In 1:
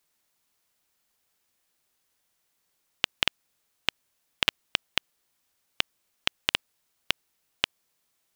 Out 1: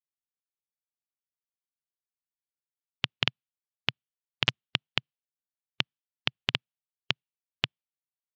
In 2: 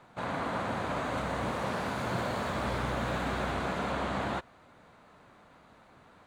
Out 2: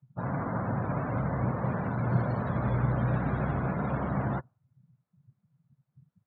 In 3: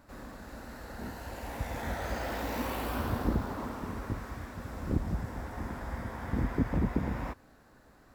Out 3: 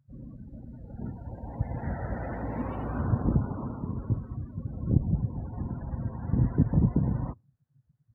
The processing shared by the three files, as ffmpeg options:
-af "equalizer=f=130:t=o:w=1.2:g=14,afftdn=nr=33:nf=-37,volume=-1.5dB"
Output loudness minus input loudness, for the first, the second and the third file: -1.5, +2.5, +5.0 LU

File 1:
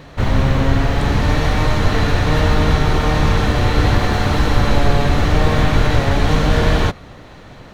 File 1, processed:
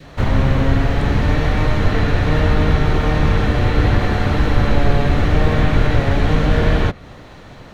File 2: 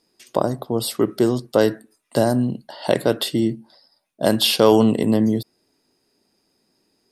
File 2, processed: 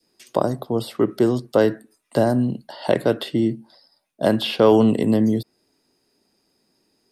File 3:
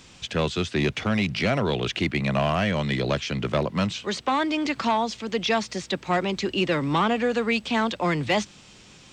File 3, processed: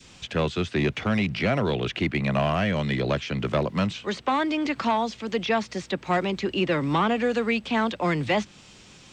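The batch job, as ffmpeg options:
-filter_complex "[0:a]adynamicequalizer=threshold=0.0224:dfrequency=970:dqfactor=1.5:tfrequency=970:tqfactor=1.5:attack=5:release=100:ratio=0.375:range=2:mode=cutabove:tftype=bell,acrossover=split=300|3100[a][b][c];[c]acompressor=threshold=-42dB:ratio=5[d];[a][b][d]amix=inputs=3:normalize=0"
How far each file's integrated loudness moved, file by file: -0.5, -0.5, -0.5 LU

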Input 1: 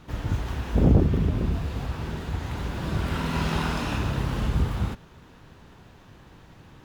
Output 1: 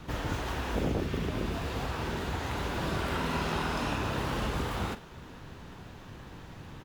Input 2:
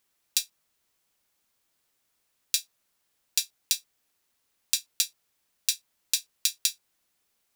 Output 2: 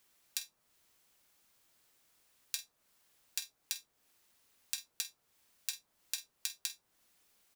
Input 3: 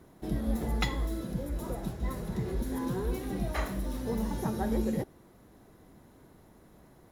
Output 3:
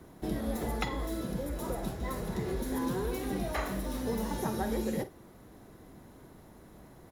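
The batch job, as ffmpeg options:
-filter_complex "[0:a]asplit=2[a][b];[b]adelay=47,volume=-14dB[c];[a][c]amix=inputs=2:normalize=0,acrossover=split=290|1400[d][e][f];[d]acompressor=threshold=-39dB:ratio=4[g];[e]acompressor=threshold=-36dB:ratio=4[h];[f]acompressor=threshold=-42dB:ratio=4[i];[g][h][i]amix=inputs=3:normalize=0,volume=3.5dB"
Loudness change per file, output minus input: -6.0, -12.5, -1.0 LU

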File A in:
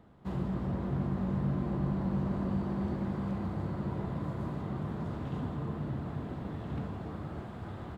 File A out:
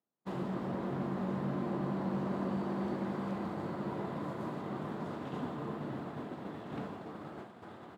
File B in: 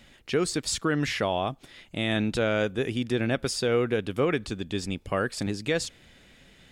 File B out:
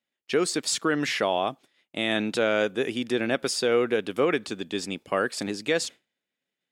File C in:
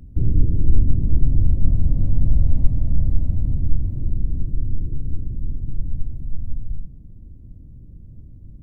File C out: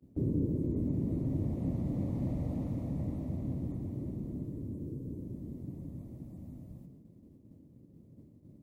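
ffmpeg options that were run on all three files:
-af "agate=range=-33dB:threshold=-35dB:ratio=3:detection=peak,highpass=250,volume=2.5dB"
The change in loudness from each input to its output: -3.0, +1.5, -12.0 LU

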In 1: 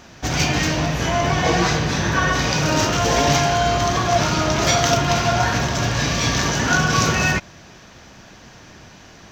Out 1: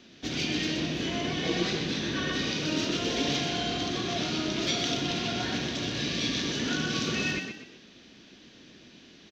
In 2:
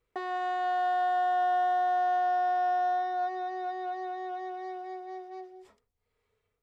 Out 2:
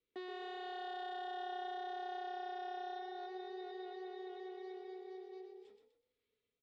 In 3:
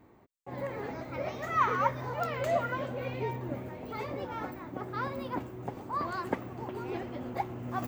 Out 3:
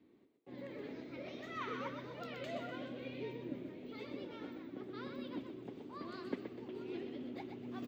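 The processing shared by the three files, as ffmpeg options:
-filter_complex "[0:a]firequalizer=gain_entry='entry(230,0);entry(520,-14);entry(820,-23);entry(3600,2);entry(12000,-4)':delay=0.05:min_phase=1,asplit=2[a][b];[b]alimiter=limit=-14.5dB:level=0:latency=1:release=212,volume=-2dB[c];[a][c]amix=inputs=2:normalize=0,acrossover=split=260 3300:gain=0.0794 1 0.1[d][e][f];[d][e][f]amix=inputs=3:normalize=0,asplit=5[g][h][i][j][k];[h]adelay=124,afreqshift=32,volume=-7dB[l];[i]adelay=248,afreqshift=64,volume=-15.6dB[m];[j]adelay=372,afreqshift=96,volume=-24.3dB[n];[k]adelay=496,afreqshift=128,volume=-32.9dB[o];[g][l][m][n][o]amix=inputs=5:normalize=0,volume=-3dB"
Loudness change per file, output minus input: -10.5, -16.0, -11.0 LU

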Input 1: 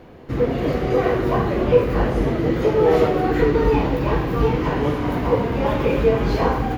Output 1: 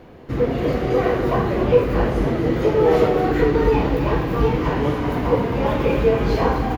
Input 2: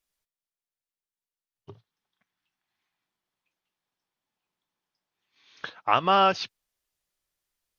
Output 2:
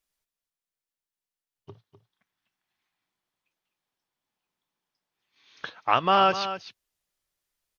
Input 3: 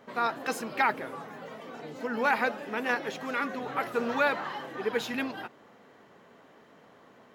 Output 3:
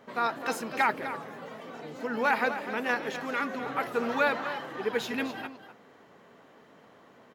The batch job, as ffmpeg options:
-af "aecho=1:1:252:0.266"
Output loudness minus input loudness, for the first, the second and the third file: +0.5, 0.0, 0.0 LU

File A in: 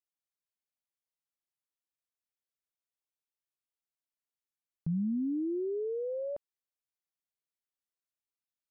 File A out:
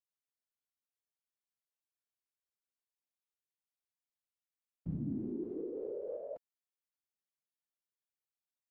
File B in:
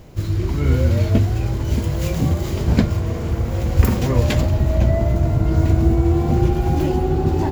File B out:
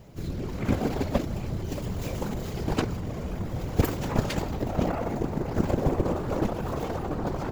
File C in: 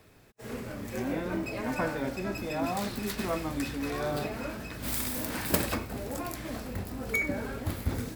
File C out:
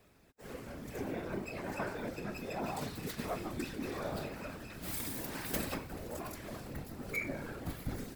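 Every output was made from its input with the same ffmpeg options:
-af "aeval=exprs='0.891*(cos(1*acos(clip(val(0)/0.891,-1,1)))-cos(1*PI/2))+0.282*(cos(7*acos(clip(val(0)/0.891,-1,1)))-cos(7*PI/2))':c=same,afftfilt=real='hypot(re,im)*cos(2*PI*random(0))':imag='hypot(re,im)*sin(2*PI*random(1))':win_size=512:overlap=0.75,volume=-2.5dB"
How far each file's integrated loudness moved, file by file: -7.0, -10.5, -7.5 LU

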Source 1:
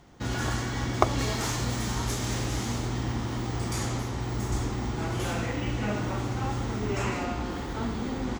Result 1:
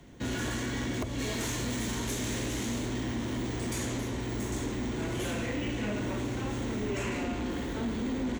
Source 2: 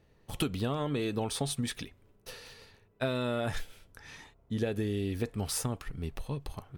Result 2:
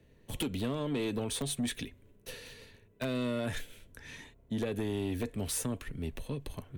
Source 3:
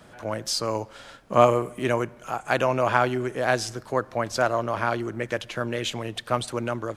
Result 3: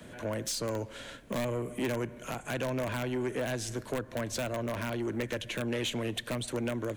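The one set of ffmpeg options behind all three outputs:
-filter_complex "[0:a]acrossover=split=93|200[a][b][c];[a]acompressor=threshold=-41dB:ratio=4[d];[b]acompressor=threshold=-46dB:ratio=4[e];[c]acompressor=threshold=-29dB:ratio=4[f];[d][e][f]amix=inputs=3:normalize=0,asplit=2[g][h];[h]aeval=exprs='(mod(11.9*val(0)+1,2)-1)/11.9':c=same,volume=-3dB[i];[g][i]amix=inputs=2:normalize=0,equalizer=f=250:t=o:w=0.33:g=4,equalizer=f=800:t=o:w=0.33:g=-10,equalizer=f=1.25k:t=o:w=0.33:g=-10,equalizer=f=5k:t=o:w=0.33:g=-8,asoftclip=type=tanh:threshold=-24dB,volume=-2dB"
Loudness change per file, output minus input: -3.0, -1.5, -8.5 LU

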